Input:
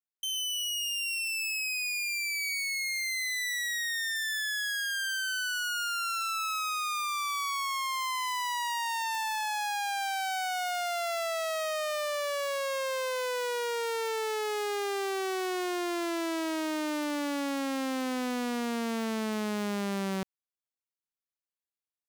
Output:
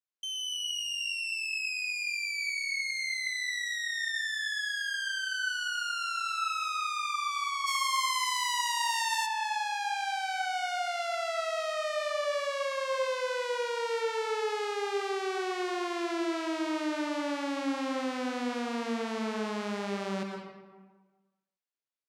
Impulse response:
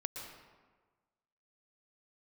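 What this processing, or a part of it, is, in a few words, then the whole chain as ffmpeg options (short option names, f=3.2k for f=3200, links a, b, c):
supermarket ceiling speaker: -filter_complex "[0:a]highpass=200,lowpass=6.6k[a];[1:a]atrim=start_sample=2205[b];[a][b]afir=irnorm=-1:irlink=0,asplit=3[c][d][e];[c]afade=t=out:st=7.66:d=0.02[f];[d]aemphasis=mode=production:type=75kf,afade=t=in:st=7.66:d=0.02,afade=t=out:st=9.25:d=0.02[g];[e]afade=t=in:st=9.25:d=0.02[h];[f][g][h]amix=inputs=3:normalize=0"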